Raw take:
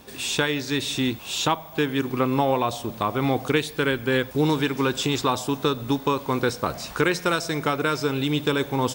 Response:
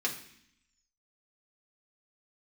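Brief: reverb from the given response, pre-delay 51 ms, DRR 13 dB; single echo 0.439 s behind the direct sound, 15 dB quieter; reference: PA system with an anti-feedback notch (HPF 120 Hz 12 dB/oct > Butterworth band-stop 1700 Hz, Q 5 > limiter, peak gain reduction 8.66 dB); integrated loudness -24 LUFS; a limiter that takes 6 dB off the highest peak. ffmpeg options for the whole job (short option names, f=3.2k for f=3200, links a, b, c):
-filter_complex "[0:a]alimiter=limit=-14dB:level=0:latency=1,aecho=1:1:439:0.178,asplit=2[a][b];[1:a]atrim=start_sample=2205,adelay=51[c];[b][c]afir=irnorm=-1:irlink=0,volume=-19dB[d];[a][d]amix=inputs=2:normalize=0,highpass=120,asuperstop=centerf=1700:order=8:qfactor=5,volume=6dB,alimiter=limit=-13.5dB:level=0:latency=1"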